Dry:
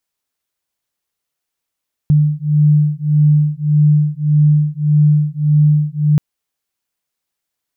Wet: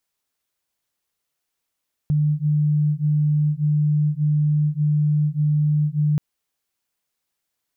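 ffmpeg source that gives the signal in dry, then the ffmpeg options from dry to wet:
-f lavfi -i "aevalsrc='0.237*(sin(2*PI*149*t)+sin(2*PI*150.7*t))':duration=4.08:sample_rate=44100"
-af "alimiter=limit=-15.5dB:level=0:latency=1:release=52"

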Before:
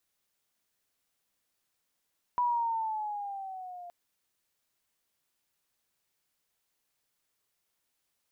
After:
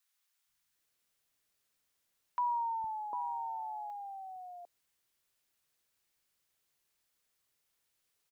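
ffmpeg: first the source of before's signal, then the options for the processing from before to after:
-f lavfi -i "aevalsrc='pow(10,(-24-18*t/1.52)/20)*sin(2*PI*985*1.52/(-6*log(2)/12)*(exp(-6*log(2)/12*t/1.52)-1))':duration=1.52:sample_rate=44100"
-filter_complex "[0:a]acrossover=split=230|810[link_01][link_02][link_03];[link_01]adelay=460[link_04];[link_02]adelay=750[link_05];[link_04][link_05][link_03]amix=inputs=3:normalize=0"

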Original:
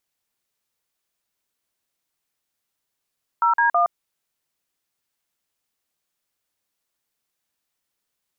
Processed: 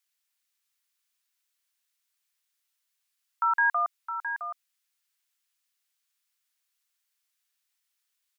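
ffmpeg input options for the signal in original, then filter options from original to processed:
-f lavfi -i "aevalsrc='0.133*clip(min(mod(t,0.162),0.117-mod(t,0.162))/0.002,0,1)*(eq(floor(t/0.162),0)*(sin(2*PI*941*mod(t,0.162))+sin(2*PI*1336*mod(t,0.162)))+eq(floor(t/0.162),1)*(sin(2*PI*941*mod(t,0.162))+sin(2*PI*1633*mod(t,0.162)))+eq(floor(t/0.162),2)*(sin(2*PI*697*mod(t,0.162))+sin(2*PI*1209*mod(t,0.162))))':duration=0.486:sample_rate=44100"
-filter_complex "[0:a]highpass=1500,asplit=2[link_01][link_02];[link_02]aecho=0:1:664:0.355[link_03];[link_01][link_03]amix=inputs=2:normalize=0"

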